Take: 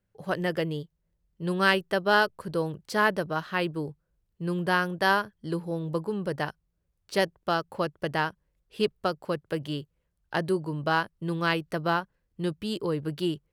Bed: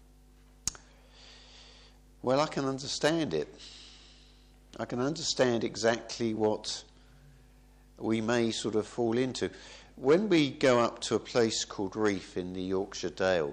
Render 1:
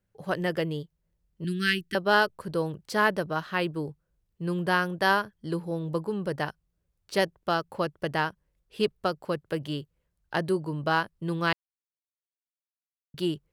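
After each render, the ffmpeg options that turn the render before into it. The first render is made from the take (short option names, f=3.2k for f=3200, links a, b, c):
-filter_complex "[0:a]asettb=1/sr,asplit=3[a][b][c];[a]atrim=end=1.444[d];[b]atrim=start=1.44:end=1.95,asetpts=PTS-STARTPTS,afade=t=in:d=0.004:c=qsin,afade=t=out:st=0.506:d=0.004:c=qsin,asuperstop=centerf=740:order=8:qfactor=0.58[e];[c]atrim=start=1.946[f];[d][e]acrossfade=d=0.004:c1=hsin:c2=qsin[g];[g][f]acrossfade=d=0.004:c1=qsin:c2=hsin,asplit=3[h][i][j];[h]atrim=end=11.53,asetpts=PTS-STARTPTS,afade=t=out:st=11.526:d=0.004:c=hsin[k];[i]atrim=start=11.53:end=13.14,asetpts=PTS-STARTPTS,volume=0[l];[j]atrim=start=13.14,asetpts=PTS-STARTPTS,afade=t=in:d=0.004:c=hsin[m];[k][l][m]concat=n=3:v=0:a=1"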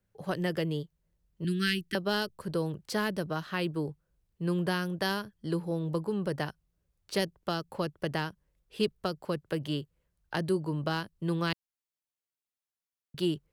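-filter_complex "[0:a]acrossover=split=350|3000[a][b][c];[b]acompressor=threshold=-32dB:ratio=6[d];[a][d][c]amix=inputs=3:normalize=0"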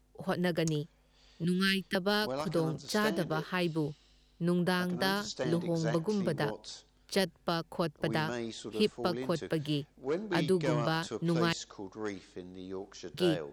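-filter_complex "[1:a]volume=-9.5dB[a];[0:a][a]amix=inputs=2:normalize=0"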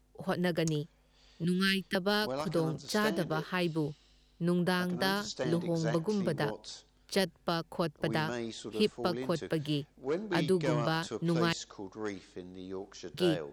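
-af anull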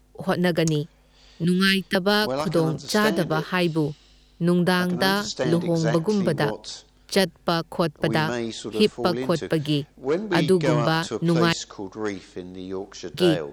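-af "volume=9.5dB"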